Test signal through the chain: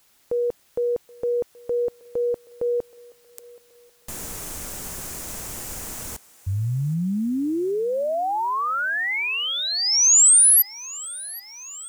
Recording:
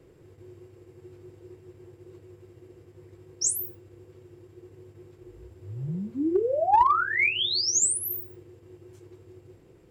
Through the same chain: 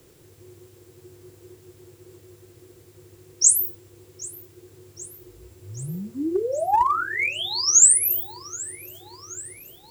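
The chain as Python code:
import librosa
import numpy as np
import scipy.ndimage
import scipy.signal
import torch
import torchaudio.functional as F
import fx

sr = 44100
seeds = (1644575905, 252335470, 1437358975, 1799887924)

y = fx.high_shelf_res(x, sr, hz=5400.0, db=8.5, q=1.5)
y = fx.quant_dither(y, sr, seeds[0], bits=10, dither='triangular')
y = fx.echo_thinned(y, sr, ms=776, feedback_pct=68, hz=550.0, wet_db=-20)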